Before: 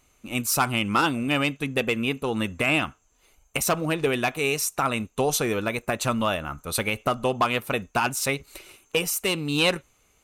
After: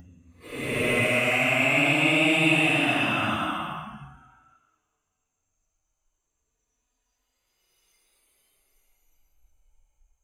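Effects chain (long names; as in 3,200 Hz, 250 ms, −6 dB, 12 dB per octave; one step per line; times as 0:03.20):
extreme stretch with random phases 11×, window 0.10 s, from 0:02.53
noise reduction from a noise print of the clip's start 12 dB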